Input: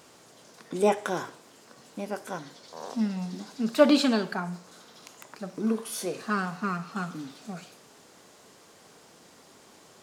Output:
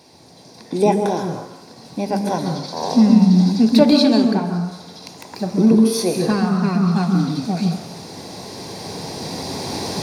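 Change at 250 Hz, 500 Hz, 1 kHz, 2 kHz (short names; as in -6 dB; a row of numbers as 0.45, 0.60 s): +14.5, +8.0, +9.0, +2.5 dB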